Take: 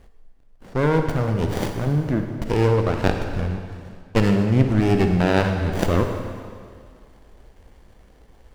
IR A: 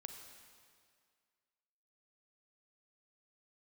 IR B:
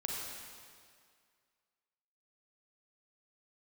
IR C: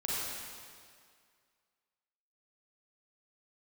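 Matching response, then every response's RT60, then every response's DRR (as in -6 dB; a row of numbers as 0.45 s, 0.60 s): A; 2.1 s, 2.1 s, 2.1 s; 5.0 dB, -2.5 dB, -7.0 dB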